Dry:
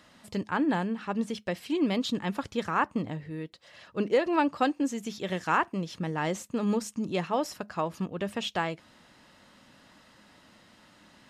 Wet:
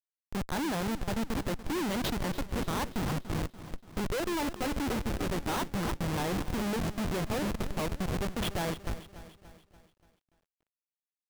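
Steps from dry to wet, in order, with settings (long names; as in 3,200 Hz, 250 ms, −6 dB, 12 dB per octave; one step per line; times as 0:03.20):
downward expander −49 dBFS
on a send: echo with a time of its own for lows and highs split 530 Hz, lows 776 ms, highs 293 ms, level −12 dB
on the sum: comparator with hysteresis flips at −31 dBFS
feedback echo at a low word length 289 ms, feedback 55%, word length 10 bits, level −14 dB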